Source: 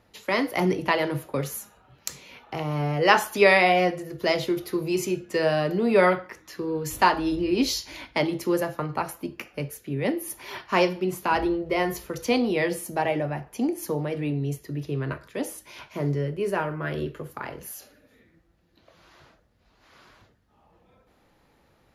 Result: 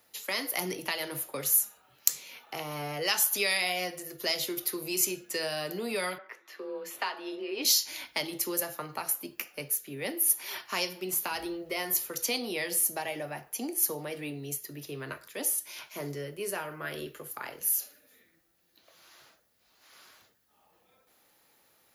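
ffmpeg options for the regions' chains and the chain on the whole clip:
-filter_complex "[0:a]asettb=1/sr,asplit=3[s0][s1][s2];[s0]atrim=end=6.184[s3];[s1]atrim=start=6.18:end=7.65,asetpts=PTS-STARTPTS,afade=t=in:d=0.004:c=qsin,afade=t=out:st=1.466:d=0.004:c=qsin,acrossover=split=250 3300:gain=0.0794 1 0.1[s4][s5][s6];[s4][s5][s6]amix=inputs=3:normalize=0,afreqshift=27[s7];[s2]atrim=start=7.646[s8];[s3][s7]acrossfade=d=0.004:c1=hsin:c2=qsin[s9];[s9][s8]acrossfade=d=0.004:c1=qsin:c2=hsin,aemphasis=mode=production:type=riaa,acrossover=split=170|3000[s10][s11][s12];[s11]acompressor=threshold=0.0447:ratio=6[s13];[s10][s13][s12]amix=inputs=3:normalize=0,bandreject=f=1000:w=24,volume=0.596"

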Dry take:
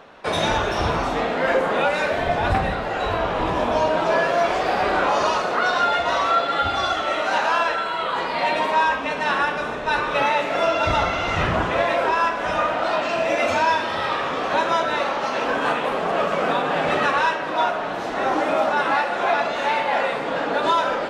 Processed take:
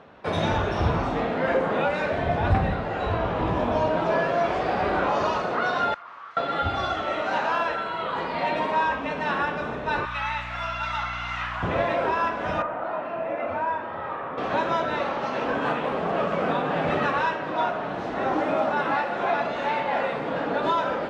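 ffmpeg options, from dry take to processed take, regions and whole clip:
-filter_complex "[0:a]asettb=1/sr,asplit=3[s0][s1][s2];[s0]atrim=end=5.944[s3];[s1]atrim=start=5.94:end=6.37,asetpts=PTS-STARTPTS,afade=t=in:d=0.004:c=qsin,afade=t=out:st=0.426:d=0.004:c=qsin,aeval=exprs='0.0708*(abs(mod(val(0)/0.0708+3,4)-2)-1)':c=same,bandpass=f=1200:t=q:w=5.2[s4];[s2]atrim=start=6.366[s5];[s3][s4]acrossfade=d=0.004:c1=hsin:c2=qsin[s6];[s6][s5]acrossfade=d=0.004:c1=qsin:c2=hsin,asettb=1/sr,asplit=3[s7][s8][s9];[s7]atrim=end=10.054[s10];[s8]atrim=start=10.05:end=11.63,asetpts=PTS-STARTPTS,afade=t=in:d=0.004:c=qsin,afade=t=out:st=1.576:d=0.004:c=qsin,highpass=f=990:w=0.5412,highpass=f=990:w=1.3066,aeval=exprs='val(0)+0.01*(sin(2*PI*60*n/s)+sin(2*PI*2*60*n/s)/2+sin(2*PI*3*60*n/s)/3+sin(2*PI*4*60*n/s)/4+sin(2*PI*5*60*n/s)/5)':c=same[s11];[s9]atrim=start=11.626[s12];[s10][s11]acrossfade=d=0.004:c1=hsin:c2=qsin[s13];[s13][s12]acrossfade=d=0.004:c1=qsin:c2=hsin,asettb=1/sr,asplit=3[s14][s15][s16];[s14]atrim=end=12.624[s17];[s15]atrim=start=12.62:end=14.38,asetpts=PTS-STARTPTS,afade=t=in:d=0.004:c=qsin,afade=t=out:st=1.756:d=0.004:c=qsin,lowpass=1400,lowshelf=f=440:g=-10[s18];[s16]atrim=start=14.376[s19];[s17][s18]acrossfade=d=0.004:c1=hsin:c2=qsin[s20];[s20][s19]acrossfade=d=0.004:c1=qsin:c2=hsin,highpass=87,aemphasis=mode=reproduction:type=bsi,volume=0.596"

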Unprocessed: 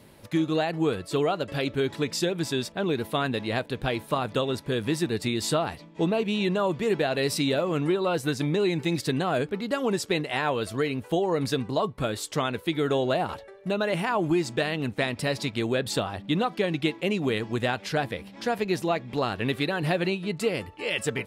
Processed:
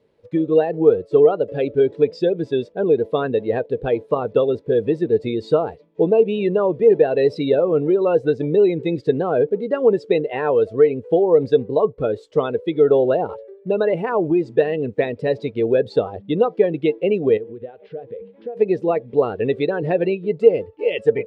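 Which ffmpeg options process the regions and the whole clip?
-filter_complex "[0:a]asettb=1/sr,asplit=3[s0][s1][s2];[s0]atrim=end=17.374[s3];[s1]atrim=start=17.37:end=18.57,asetpts=PTS-STARTPTS,afade=t=in:d=0.004:c=qsin,afade=t=out:st=1.196:d=0.004:c=qsin,lowpass=f=3500:w=0.5412,lowpass=f=3500:w=1.3066,bandreject=f=156.3:t=h:w=4,bandreject=f=312.6:t=h:w=4,bandreject=f=468.9:t=h:w=4,bandreject=f=625.2:t=h:w=4,bandreject=f=781.5:t=h:w=4,acompressor=threshold=0.0178:ratio=8:attack=3.2:release=140:knee=1:detection=peak[s4];[s2]atrim=start=18.566[s5];[s3][s4]acrossfade=d=0.004:c1=hsin:c2=qsin[s6];[s6][s5]acrossfade=d=0.004:c1=qsin:c2=hsin,lowpass=4900,equalizer=f=460:w=2.4:g=14.5,afftdn=nr=17:nf=-27,volume=1.12"

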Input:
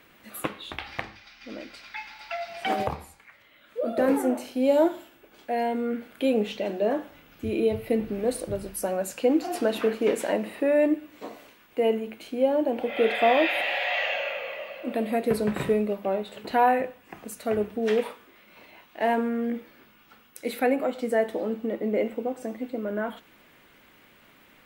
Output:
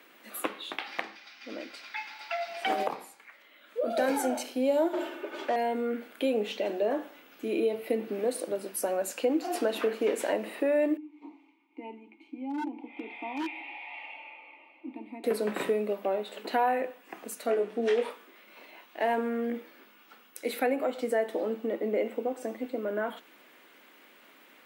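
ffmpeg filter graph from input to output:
-filter_complex "[0:a]asettb=1/sr,asplit=3[s0][s1][s2];[s0]atrim=end=3.904[s3];[s1]atrim=start=3.9:end=4.43,asetpts=PTS-STARTPTS,afade=t=in:d=0.004:c=qsin,afade=t=out:st=0.526:d=0.004:c=qsin,equalizer=f=5000:t=o:w=1.7:g=10.5,aecho=1:1:1.3:0.57,atrim=end_sample=23373[s4];[s2]atrim=start=4.426[s5];[s3][s4]acrossfade=d=0.004:c1=hsin:c2=qsin[s6];[s6][s5]acrossfade=d=0.004:c1=qsin:c2=hsin,asettb=1/sr,asplit=3[s7][s8][s9];[s7]atrim=end=4.934[s10];[s8]atrim=start=4.93:end=5.56,asetpts=PTS-STARTPTS,afade=t=in:d=0.004:c=qsin,afade=t=out:st=0.626:d=0.004:c=qsin,equalizer=f=420:w=3.4:g=10,aecho=1:1:3.3:0.76,atrim=end_sample=27783,asplit=2[s11][s12];[s12]highpass=f=720:p=1,volume=15.8,asoftclip=type=tanh:threshold=0.119[s13];[s11][s13]amix=inputs=2:normalize=0,lowpass=f=1200:p=1,volume=0.501[s14];[s9]atrim=start=5.556[s15];[s10][s14]acrossfade=d=0.004:c1=hsin:c2=qsin[s16];[s16][s15]acrossfade=d=0.004:c1=qsin:c2=hsin,asettb=1/sr,asplit=3[s17][s18][s19];[s17]atrim=end=10.974[s20];[s18]atrim=start=10.97:end=15.24,asetpts=PTS-STARTPTS,afade=t=in:d=0.004:c=qsin,afade=t=out:st=4.266:d=0.004:c=qsin,asplit=3[s21][s22][s23];[s21]bandpass=f=300:t=q:w=8,volume=1[s24];[s22]bandpass=f=870:t=q:w=8,volume=0.501[s25];[s23]bandpass=f=2240:t=q:w=8,volume=0.355[s26];[s24][s25][s26]amix=inputs=3:normalize=0,aecho=1:1:3.3:0.37,atrim=end_sample=188307,aeval=exprs='0.0473*(abs(mod(val(0)/0.0473+3,4)-2)-1)':c=same[s27];[s19]atrim=start=15.236[s28];[s20][s27]acrossfade=d=0.004:c1=hsin:c2=qsin[s29];[s29][s28]acrossfade=d=0.004:c1=qsin:c2=hsin,asettb=1/sr,asplit=3[s30][s31][s32];[s30]atrim=end=17.464[s33];[s31]atrim=start=17.46:end=18.1,asetpts=PTS-STARTPTS,afade=t=in:d=0.004:c=qsin,afade=t=out:st=0.636:d=0.004:c=qsin,lowpass=9300,asplit=2[s34][s35];[s35]adelay=21,volume=0.631[s36];[s34][s36]amix=inputs=2:normalize=0,atrim=end_sample=28224[s37];[s32]atrim=start=18.096[s38];[s33][s37]acrossfade=d=0.004:c1=hsin:c2=qsin[s39];[s39][s38]acrossfade=d=0.004:c1=qsin:c2=hsin,highpass=f=250:w=0.5412,highpass=f=250:w=1.3066,acompressor=threshold=0.0501:ratio=2"

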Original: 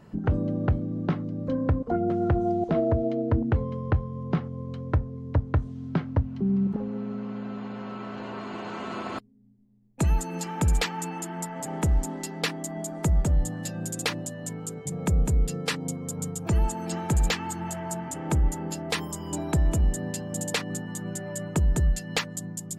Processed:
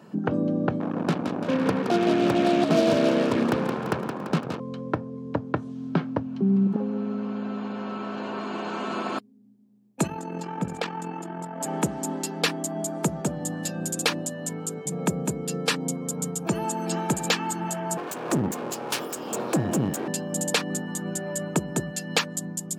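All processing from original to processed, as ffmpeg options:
-filter_complex "[0:a]asettb=1/sr,asplit=3[s0][s1][s2];[s0]atrim=end=0.804[s3];[s1]atrim=start=0.8:end=4.6,asetpts=PTS-STARTPTS,afade=t=in:d=0.004:c=qsin,afade=t=out:st=3.796:d=0.004:c=qsin,tremolo=f=71:d=0.261,acrusher=bits=4:mix=0:aa=0.5,asplit=9[s4][s5][s6][s7][s8][s9][s10][s11][s12];[s5]adelay=170,afreqshift=-69,volume=0.531[s13];[s6]adelay=340,afreqshift=-138,volume=0.313[s14];[s7]adelay=510,afreqshift=-207,volume=0.184[s15];[s8]adelay=680,afreqshift=-276,volume=0.11[s16];[s9]adelay=850,afreqshift=-345,volume=0.0646[s17];[s10]adelay=1020,afreqshift=-414,volume=0.038[s18];[s11]adelay=1190,afreqshift=-483,volume=0.0224[s19];[s12]adelay=1360,afreqshift=-552,volume=0.0132[s20];[s4][s13][s14][s15][s16][s17][s18][s19][s20]amix=inputs=9:normalize=0,atrim=end_sample=167580[s21];[s2]atrim=start=4.596[s22];[s3][s21]acrossfade=d=0.004:c1=hsin:c2=qsin[s23];[s23][s22]acrossfade=d=0.004:c1=qsin:c2=hsin,asettb=1/sr,asplit=3[s24][s25][s26];[s24]atrim=end=10.074[s27];[s25]atrim=start=10.07:end=11.61,asetpts=PTS-STARTPTS,afade=t=in:d=0.004:c=qsin,afade=t=out:st=1.536:d=0.004:c=qsin,lowpass=f=1600:p=1,tremolo=f=43:d=0.621[s28];[s26]atrim=start=11.606[s29];[s27][s28]acrossfade=d=0.004:c1=hsin:c2=qsin[s30];[s30][s29]acrossfade=d=0.004:c1=qsin:c2=hsin,asettb=1/sr,asplit=3[s31][s32][s33];[s31]atrim=end=17.974[s34];[s32]atrim=start=17.97:end=20.08,asetpts=PTS-STARTPTS,afade=t=in:d=0.004:c=qsin,afade=t=out:st=2.106:d=0.004:c=qsin,lowshelf=f=150:g=8,aeval=exprs='abs(val(0))':c=same[s35];[s33]atrim=start=20.076[s36];[s34][s35]acrossfade=d=0.004:c1=hsin:c2=qsin[s37];[s37][s36]acrossfade=d=0.004:c1=qsin:c2=hsin,highpass=f=170:w=0.5412,highpass=f=170:w=1.3066,bandreject=f=2000:w=9.9,volume=1.68"

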